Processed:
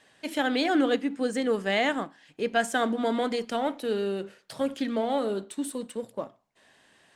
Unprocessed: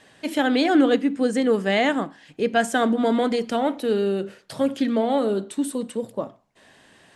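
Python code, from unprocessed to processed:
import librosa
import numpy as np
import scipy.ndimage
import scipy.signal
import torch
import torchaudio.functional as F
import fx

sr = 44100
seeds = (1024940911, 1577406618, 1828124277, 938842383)

p1 = fx.low_shelf(x, sr, hz=460.0, db=-5.5)
p2 = np.sign(p1) * np.maximum(np.abs(p1) - 10.0 ** (-41.0 / 20.0), 0.0)
p3 = p1 + (p2 * librosa.db_to_amplitude(-7.0))
y = p3 * librosa.db_to_amplitude(-6.0)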